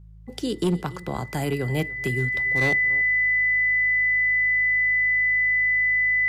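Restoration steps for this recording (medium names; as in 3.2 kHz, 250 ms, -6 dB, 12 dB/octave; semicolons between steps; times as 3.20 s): clip repair -16.5 dBFS; de-hum 53.4 Hz, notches 3; band-stop 2 kHz, Q 30; inverse comb 286 ms -20.5 dB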